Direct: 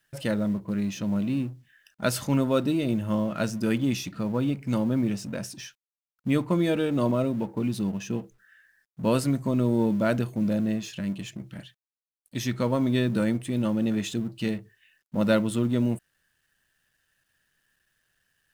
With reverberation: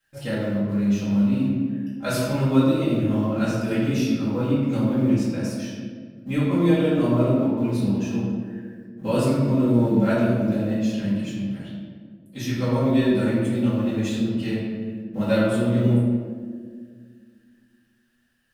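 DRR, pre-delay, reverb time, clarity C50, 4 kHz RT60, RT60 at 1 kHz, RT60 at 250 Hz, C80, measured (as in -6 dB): -12.0 dB, 4 ms, 1.8 s, -1.0 dB, 0.95 s, 1.5 s, 2.6 s, 1.0 dB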